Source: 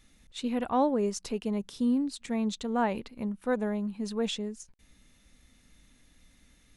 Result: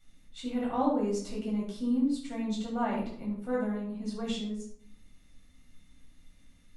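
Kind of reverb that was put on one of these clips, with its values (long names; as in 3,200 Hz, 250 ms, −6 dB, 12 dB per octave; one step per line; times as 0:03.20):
rectangular room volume 820 cubic metres, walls furnished, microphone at 7.2 metres
level −12 dB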